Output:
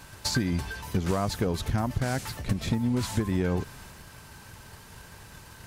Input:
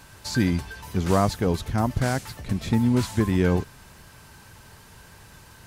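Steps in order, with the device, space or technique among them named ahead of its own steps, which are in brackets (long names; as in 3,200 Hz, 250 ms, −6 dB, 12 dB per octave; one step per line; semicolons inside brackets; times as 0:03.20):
drum-bus smash (transient designer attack +7 dB, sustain +3 dB; downward compressor 12 to 1, threshold −20 dBFS, peak gain reduction 10 dB; soft clipping −16 dBFS, distortion −17 dB)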